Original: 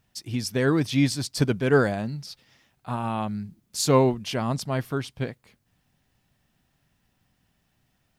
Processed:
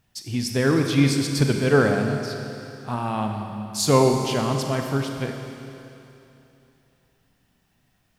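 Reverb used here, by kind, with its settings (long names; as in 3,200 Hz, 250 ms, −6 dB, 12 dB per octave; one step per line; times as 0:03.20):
four-comb reverb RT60 2.9 s, combs from 29 ms, DRR 3.5 dB
level +1.5 dB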